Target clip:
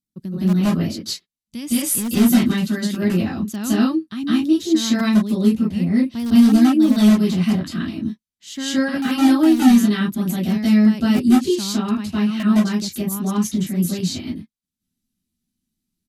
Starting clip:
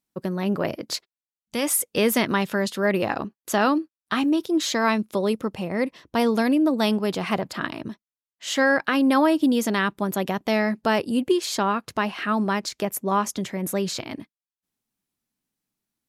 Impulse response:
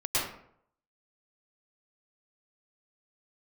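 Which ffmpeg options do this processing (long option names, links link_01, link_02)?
-filter_complex "[0:a]firequalizer=gain_entry='entry(230,0);entry(500,-21);entry(3800,-7)':delay=0.05:min_phase=1,asplit=2[link_01][link_02];[link_02]aeval=exprs='(mod(8.91*val(0)+1,2)-1)/8.91':channel_layout=same,volume=-9dB[link_03];[link_01][link_03]amix=inputs=2:normalize=0[link_04];[1:a]atrim=start_sample=2205,afade=type=out:start_time=0.18:duration=0.01,atrim=end_sample=8379,asetrate=27783,aresample=44100[link_05];[link_04][link_05]afir=irnorm=-1:irlink=0,volume=-2.5dB"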